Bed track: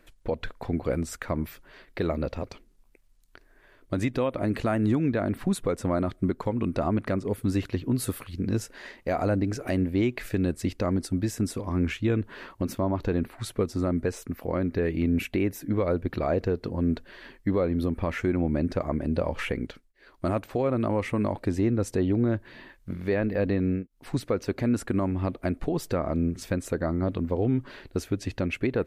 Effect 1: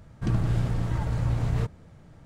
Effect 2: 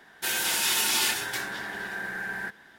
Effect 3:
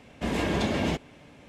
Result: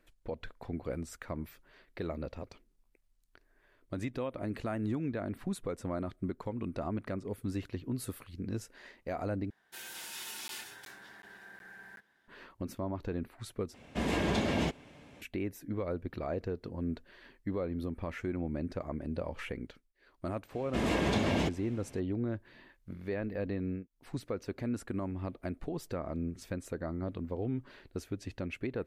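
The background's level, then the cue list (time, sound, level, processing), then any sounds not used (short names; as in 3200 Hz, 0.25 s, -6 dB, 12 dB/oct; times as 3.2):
bed track -10 dB
9.5 replace with 2 -18 dB + crackling interface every 0.37 s zero, from 0.98
13.74 replace with 3 -3.5 dB
20.52 add 3 -3 dB
not used: 1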